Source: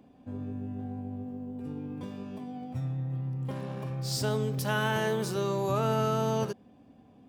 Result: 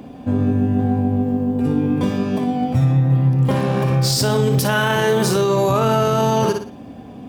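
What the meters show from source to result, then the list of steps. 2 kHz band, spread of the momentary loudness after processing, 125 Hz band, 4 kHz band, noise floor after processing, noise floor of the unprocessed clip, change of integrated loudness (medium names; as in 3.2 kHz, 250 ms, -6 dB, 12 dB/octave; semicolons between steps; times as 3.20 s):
+12.0 dB, 5 LU, +15.0 dB, +13.5 dB, -38 dBFS, -58 dBFS, +14.5 dB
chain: flutter echo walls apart 9.9 m, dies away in 0.37 s; loudness maximiser +28 dB; trim -8 dB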